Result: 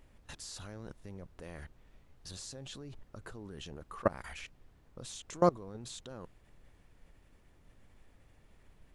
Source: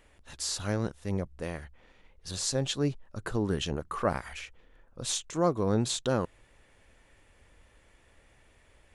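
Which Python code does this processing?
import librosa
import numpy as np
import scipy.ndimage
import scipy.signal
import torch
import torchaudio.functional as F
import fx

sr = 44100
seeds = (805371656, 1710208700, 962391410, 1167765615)

y = fx.level_steps(x, sr, step_db=24)
y = fx.dmg_noise_colour(y, sr, seeds[0], colour='brown', level_db=-61.0)
y = F.gain(torch.from_numpy(y), 2.0).numpy()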